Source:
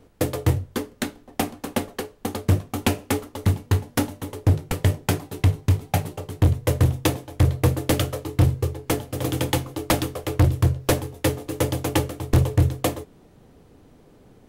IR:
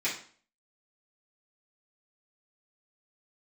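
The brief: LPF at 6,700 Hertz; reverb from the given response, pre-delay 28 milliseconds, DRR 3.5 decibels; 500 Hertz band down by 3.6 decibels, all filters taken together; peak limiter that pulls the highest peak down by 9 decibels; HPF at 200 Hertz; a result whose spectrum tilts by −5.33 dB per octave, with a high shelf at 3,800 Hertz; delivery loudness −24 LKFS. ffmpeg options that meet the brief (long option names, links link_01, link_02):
-filter_complex "[0:a]highpass=200,lowpass=6700,equalizer=frequency=500:width_type=o:gain=-4,highshelf=frequency=3800:gain=-4.5,alimiter=limit=-17.5dB:level=0:latency=1,asplit=2[link_01][link_02];[1:a]atrim=start_sample=2205,adelay=28[link_03];[link_02][link_03]afir=irnorm=-1:irlink=0,volume=-12dB[link_04];[link_01][link_04]amix=inputs=2:normalize=0,volume=7.5dB"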